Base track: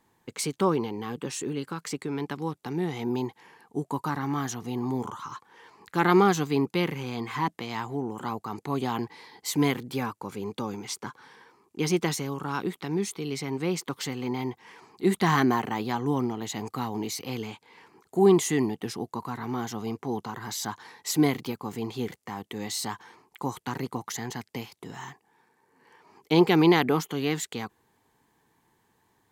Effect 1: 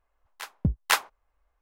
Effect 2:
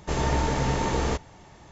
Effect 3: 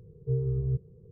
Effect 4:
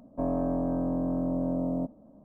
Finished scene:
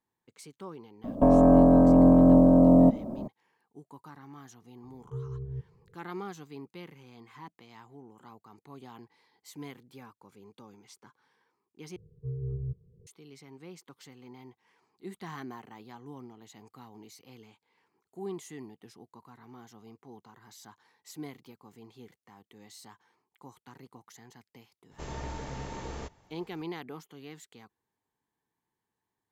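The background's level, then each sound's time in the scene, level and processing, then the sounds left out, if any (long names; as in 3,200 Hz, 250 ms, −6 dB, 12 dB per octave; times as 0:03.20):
base track −19 dB
0:01.04: mix in 4 −9.5 dB + boost into a limiter +27 dB
0:04.84: mix in 3 −9 dB
0:11.96: overwrite with 3 −11 dB + phase shifter 1.8 Hz, delay 1 ms, feedback 49%
0:24.91: mix in 2 −14 dB
not used: 1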